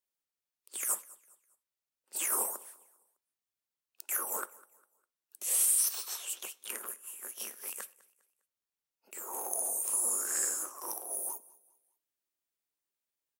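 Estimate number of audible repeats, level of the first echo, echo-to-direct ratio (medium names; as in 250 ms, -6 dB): 2, -22.0 dB, -21.5 dB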